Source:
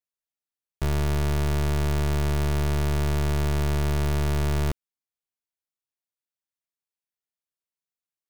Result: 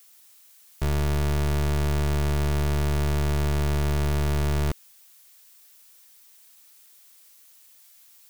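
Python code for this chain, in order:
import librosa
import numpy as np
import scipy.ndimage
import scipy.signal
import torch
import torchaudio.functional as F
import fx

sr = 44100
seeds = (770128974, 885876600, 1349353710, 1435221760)

y = fx.dmg_noise_colour(x, sr, seeds[0], colour='blue', level_db=-54.0)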